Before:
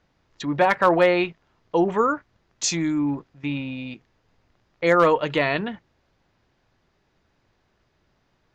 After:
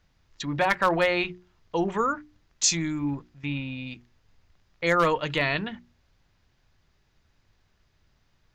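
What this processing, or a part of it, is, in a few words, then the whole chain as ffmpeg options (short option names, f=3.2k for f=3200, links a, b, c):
smiley-face EQ: -filter_complex "[0:a]asettb=1/sr,asplit=3[a][b][c];[a]atrim=end=2.794[d];[b]atrim=start=2.79:end=3.87,asetpts=PTS-STARTPTS,afade=t=in:d=0.004:c=qsin,afade=t=out:st=1.076:d=0.004:c=qsin,acrossover=split=4200[e][f];[f]acompressor=threshold=-56dB:ratio=4:attack=1:release=60[g];[e][g]amix=inputs=2:normalize=0[h];[c]atrim=start=3.866[i];[d][h]acrossfade=d=0.004:c1=hsin:c2=qsin[j];[j][i]acrossfade=d=0.004:c1=qsin:c2=hsin,lowshelf=f=100:g=8,equalizer=f=470:t=o:w=2.9:g=-7,highshelf=f=5.3k:g=4.5,bandreject=f=60:t=h:w=6,bandreject=f=120:t=h:w=6,bandreject=f=180:t=h:w=6,bandreject=f=240:t=h:w=6,bandreject=f=300:t=h:w=6,bandreject=f=360:t=h:w=6"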